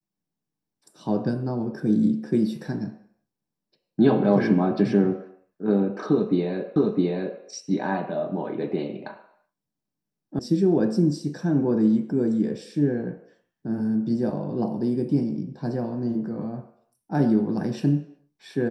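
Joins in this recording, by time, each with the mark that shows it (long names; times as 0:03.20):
0:06.76: the same again, the last 0.66 s
0:10.39: cut off before it has died away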